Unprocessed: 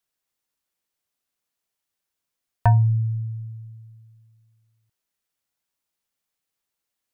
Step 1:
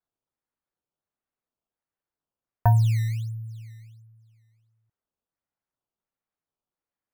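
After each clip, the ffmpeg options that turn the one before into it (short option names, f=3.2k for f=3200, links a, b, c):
-af "lowpass=1.6k,acrusher=samples=13:mix=1:aa=0.000001:lfo=1:lforange=20.8:lforate=1.4,volume=-2dB"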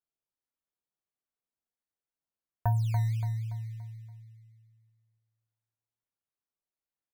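-af "aecho=1:1:286|572|858|1144|1430:0.447|0.183|0.0751|0.0308|0.0126,volume=-8.5dB"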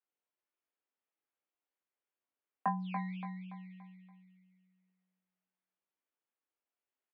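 -filter_complex "[0:a]asplit=2[a][b];[b]adelay=20,volume=-5dB[c];[a][c]amix=inputs=2:normalize=0,highpass=f=170:t=q:w=0.5412,highpass=f=170:t=q:w=1.307,lowpass=f=3k:t=q:w=0.5176,lowpass=f=3k:t=q:w=0.7071,lowpass=f=3k:t=q:w=1.932,afreqshift=73,volume=1dB"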